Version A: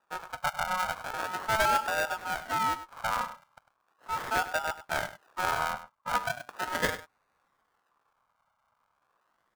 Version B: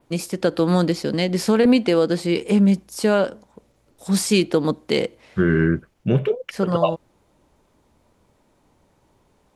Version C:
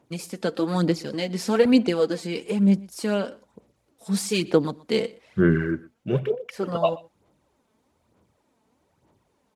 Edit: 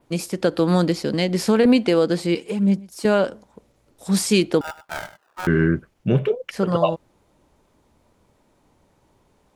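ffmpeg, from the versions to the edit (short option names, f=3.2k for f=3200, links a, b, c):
-filter_complex "[1:a]asplit=3[a][b][c];[a]atrim=end=2.352[d];[2:a]atrim=start=2.348:end=3.052[e];[b]atrim=start=3.048:end=4.612[f];[0:a]atrim=start=4.608:end=5.472[g];[c]atrim=start=5.468[h];[d][e]acrossfade=d=0.004:c1=hsin:c2=hsin[i];[i][f]acrossfade=d=0.004:c1=hsin:c2=hsin[j];[j][g]acrossfade=d=0.004:c1=hsin:c2=hsin[k];[k][h]acrossfade=d=0.004:c1=hsin:c2=hsin"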